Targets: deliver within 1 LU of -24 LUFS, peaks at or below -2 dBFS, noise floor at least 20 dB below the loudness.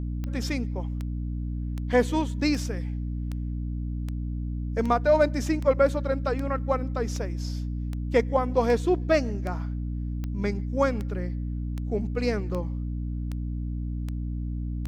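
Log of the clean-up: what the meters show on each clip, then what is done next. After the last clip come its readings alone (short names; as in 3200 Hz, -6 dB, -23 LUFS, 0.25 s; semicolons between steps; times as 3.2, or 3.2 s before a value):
clicks 20; hum 60 Hz; harmonics up to 300 Hz; hum level -28 dBFS; loudness -28.0 LUFS; peak -8.0 dBFS; loudness target -24.0 LUFS
-> de-click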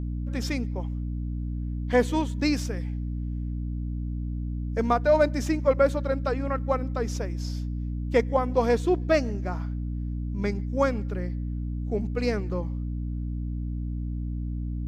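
clicks 0; hum 60 Hz; harmonics up to 300 Hz; hum level -28 dBFS
-> notches 60/120/180/240/300 Hz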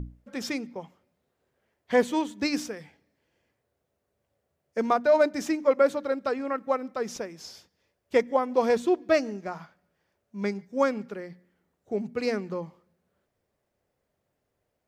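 hum none; loudness -27.0 LUFS; peak -9.0 dBFS; loudness target -24.0 LUFS
-> gain +3 dB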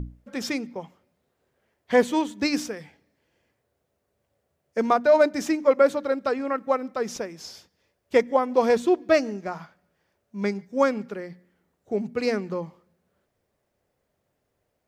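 loudness -24.0 LUFS; peak -6.0 dBFS; noise floor -76 dBFS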